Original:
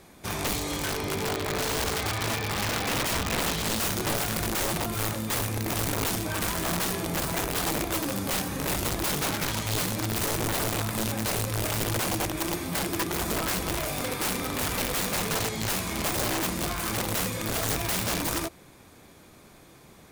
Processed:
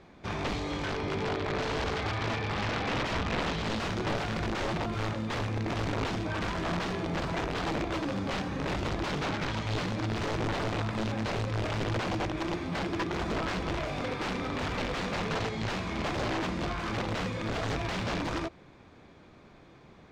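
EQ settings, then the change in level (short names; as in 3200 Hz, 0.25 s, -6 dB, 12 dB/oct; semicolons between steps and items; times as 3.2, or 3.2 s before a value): air absorption 160 m; high shelf 9200 Hz -9 dB; -1.0 dB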